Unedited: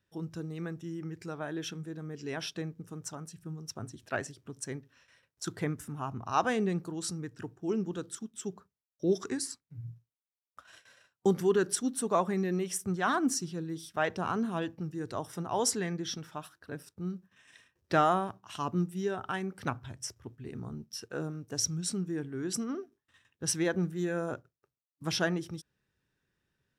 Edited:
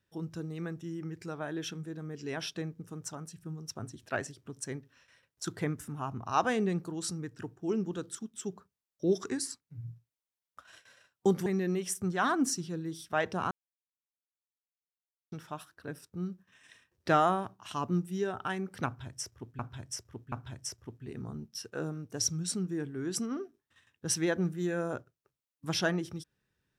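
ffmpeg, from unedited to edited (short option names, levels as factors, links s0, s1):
-filter_complex "[0:a]asplit=6[s0][s1][s2][s3][s4][s5];[s0]atrim=end=11.462[s6];[s1]atrim=start=12.298:end=14.35,asetpts=PTS-STARTPTS,afade=t=out:st=2.048:d=0.004:c=hsin[s7];[s2]atrim=start=14.35:end=16.16,asetpts=PTS-STARTPTS,volume=0[s8];[s3]atrim=start=16.16:end=20.432,asetpts=PTS-STARTPTS,afade=t=in:d=0.004:c=hsin[s9];[s4]atrim=start=19.698:end=20.432[s10];[s5]atrim=start=19.698[s11];[s7][s8][s9]concat=n=3:v=0:a=1[s12];[s6][s12]acrossfade=d=0.004:c1=hsin:c2=hsin[s13];[s13][s10]acrossfade=d=0.004:c1=hsin:c2=hsin[s14];[s14][s11]acrossfade=d=0.004:c1=hsin:c2=hsin"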